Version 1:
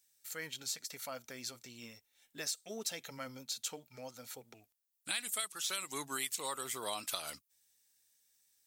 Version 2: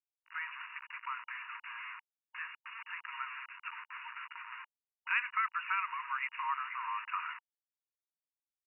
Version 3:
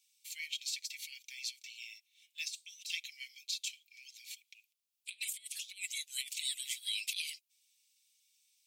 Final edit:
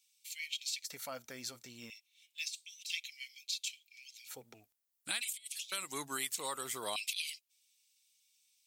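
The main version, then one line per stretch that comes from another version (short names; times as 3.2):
3
0.84–1.9 from 1
4.29–5.2 from 1, crossfade 0.06 s
5.72–6.96 from 1
not used: 2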